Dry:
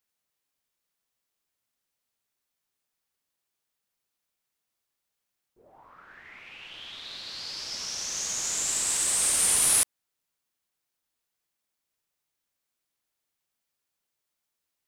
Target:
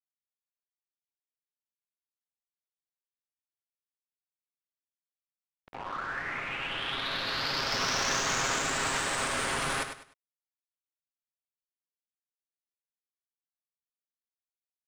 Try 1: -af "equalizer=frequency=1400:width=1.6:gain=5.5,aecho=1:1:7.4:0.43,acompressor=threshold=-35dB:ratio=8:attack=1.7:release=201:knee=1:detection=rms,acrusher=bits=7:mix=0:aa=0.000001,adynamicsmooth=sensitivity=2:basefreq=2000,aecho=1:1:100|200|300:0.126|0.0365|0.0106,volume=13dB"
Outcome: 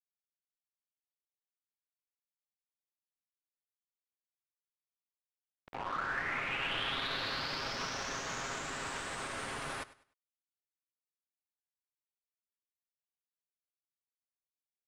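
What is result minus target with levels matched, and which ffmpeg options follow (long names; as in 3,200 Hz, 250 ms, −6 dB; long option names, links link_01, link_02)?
downward compressor: peak gain reduction +8.5 dB; echo-to-direct −9.5 dB
-af "equalizer=frequency=1400:width=1.6:gain=5.5,aecho=1:1:7.4:0.43,acompressor=threshold=-25.5dB:ratio=8:attack=1.7:release=201:knee=1:detection=rms,acrusher=bits=7:mix=0:aa=0.000001,adynamicsmooth=sensitivity=2:basefreq=2000,aecho=1:1:100|200|300:0.376|0.109|0.0316,volume=13dB"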